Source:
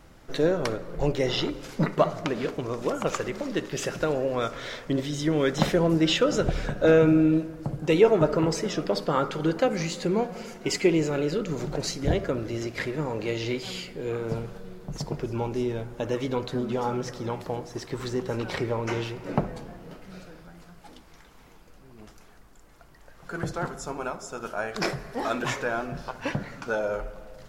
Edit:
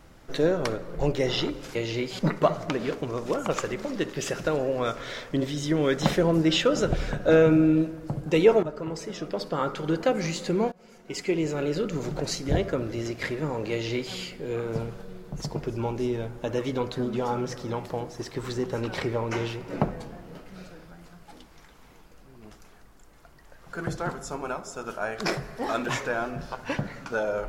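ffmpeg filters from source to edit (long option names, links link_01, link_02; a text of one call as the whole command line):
ffmpeg -i in.wav -filter_complex "[0:a]asplit=5[link_01][link_02][link_03][link_04][link_05];[link_01]atrim=end=1.752[link_06];[link_02]atrim=start=13.268:end=13.712[link_07];[link_03]atrim=start=1.748:end=8.19,asetpts=PTS-STARTPTS,afade=type=out:start_time=6.438:duration=0.004:curve=hsin:silence=0.223872[link_08];[link_04]atrim=start=8.19:end=10.28,asetpts=PTS-STARTPTS,afade=type=in:duration=1.53:silence=0.223872,afade=type=out:start_time=2.086:duration=0.004:curve=hsin:silence=0.0707946[link_09];[link_05]atrim=start=10.28,asetpts=PTS-STARTPTS,afade=type=in:duration=1.07:silence=0.0707946[link_10];[link_06][link_07]acrossfade=duration=0.004:curve1=hsin:curve2=hsin[link_11];[link_08][link_09][link_10]concat=n=3:v=0:a=1[link_12];[link_11][link_12]acrossfade=duration=0.004:curve1=hsin:curve2=hsin" out.wav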